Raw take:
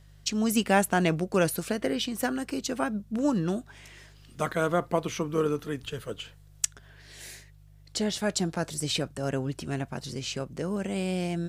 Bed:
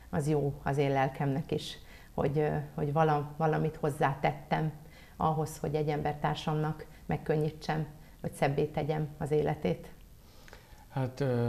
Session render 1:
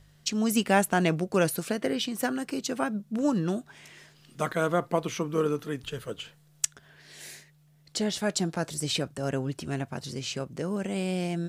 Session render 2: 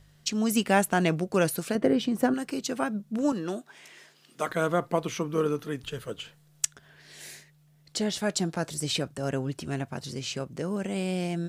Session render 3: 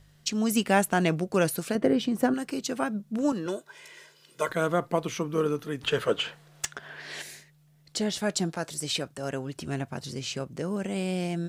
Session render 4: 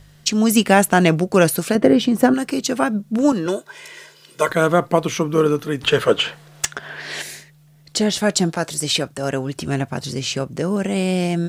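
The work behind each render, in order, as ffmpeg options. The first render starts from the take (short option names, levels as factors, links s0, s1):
-af "bandreject=f=50:t=h:w=4,bandreject=f=100:t=h:w=4"
-filter_complex "[0:a]asettb=1/sr,asplit=3[s0][s1][s2];[s0]atrim=end=1.754[s3];[s1]atrim=start=1.75:end=2.34,asetpts=PTS-STARTPTS,afade=t=in:d=0.004:c=qsin,afade=t=out:st=0.586:d=0.004:c=qsin,tiltshelf=f=1300:g=7[s4];[s2]atrim=start=2.336[s5];[s3][s4]acrossfade=d=0.004:c1=hsin:c2=qsin[s6];[s6][s5]acrossfade=d=0.004:c1=qsin:c2=hsin,asettb=1/sr,asplit=3[s7][s8][s9];[s7]atrim=end=3.324[s10];[s8]atrim=start=3.32:end=4.49,asetpts=PTS-STARTPTS,afade=t=in:d=0.004:c=qsin,afade=t=out:st=1.166:d=0.004:c=qsin,highpass=280[s11];[s9]atrim=start=4.486[s12];[s10][s11]acrossfade=d=0.004:c1=hsin:c2=qsin[s13];[s13][s12]acrossfade=d=0.004:c1=qsin:c2=hsin,asettb=1/sr,asplit=3[s14][s15][s16];[s14]atrim=end=5.244[s17];[s15]atrim=start=5.24:end=5.72,asetpts=PTS-STARTPTS,afade=t=in:d=0.004:c=qsin,afade=t=out:st=0.476:d=0.004:c=qsin,bandreject=f=7600:w=12[s18];[s16]atrim=start=5.716[s19];[s17][s18]acrossfade=d=0.004:c1=hsin:c2=qsin[s20];[s20][s19]acrossfade=d=0.004:c1=qsin:c2=hsin"
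-filter_complex "[0:a]asettb=1/sr,asplit=3[s0][s1][s2];[s0]atrim=end=3.464[s3];[s1]atrim=start=3.46:end=4.52,asetpts=PTS-STARTPTS,afade=t=in:d=0.004:c=qsin,afade=t=out:st=1.056:d=0.004:c=qsin,aecho=1:1:2:0.71,atrim=end_sample=46746[s4];[s2]atrim=start=4.516[s5];[s3][s4]acrossfade=d=0.004:c1=hsin:c2=qsin[s6];[s6][s5]acrossfade=d=0.004:c1=qsin:c2=hsin,asplit=3[s7][s8][s9];[s7]afade=t=out:st=5.81:d=0.02[s10];[s8]asplit=2[s11][s12];[s12]highpass=f=720:p=1,volume=14.1,asoftclip=type=tanh:threshold=0.596[s13];[s11][s13]amix=inputs=2:normalize=0,lowpass=f=1600:p=1,volume=0.501,afade=t=in:st=5.81:d=0.02,afade=t=out:st=7.21:d=0.02[s14];[s9]afade=t=in:st=7.21:d=0.02[s15];[s10][s14][s15]amix=inputs=3:normalize=0,asettb=1/sr,asplit=3[s16][s17][s18];[s16]atrim=end=8.524[s19];[s17]atrim=start=8.52:end=9.56,asetpts=PTS-STARTPTS,afade=t=in:d=0.004:c=qsin,afade=t=out:st=1.036:d=0.004:c=qsin,lowshelf=f=320:g=-6.5[s20];[s18]atrim=start=9.556[s21];[s19][s20]acrossfade=d=0.004:c1=hsin:c2=qsin[s22];[s22][s21]acrossfade=d=0.004:c1=qsin:c2=hsin"
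-af "volume=3.16,alimiter=limit=0.891:level=0:latency=1"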